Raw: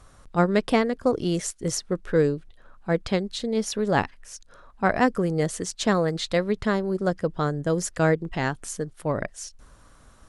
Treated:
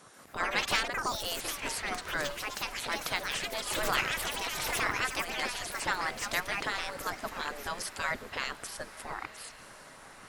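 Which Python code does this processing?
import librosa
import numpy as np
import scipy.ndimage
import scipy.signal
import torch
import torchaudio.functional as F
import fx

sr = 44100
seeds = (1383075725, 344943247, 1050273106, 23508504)

p1 = fx.spec_gate(x, sr, threshold_db=-15, keep='weak')
p2 = fx.echo_pitch(p1, sr, ms=138, semitones=4, count=3, db_per_echo=-3.0)
p3 = 10.0 ** (-31.5 / 20.0) * np.tanh(p2 / 10.0 ** (-31.5 / 20.0))
p4 = p2 + (p3 * librosa.db_to_amplitude(-7.5))
p5 = fx.echo_diffused(p4, sr, ms=1043, feedback_pct=53, wet_db=-15)
y = fx.pre_swell(p5, sr, db_per_s=22.0, at=(3.7, 4.84))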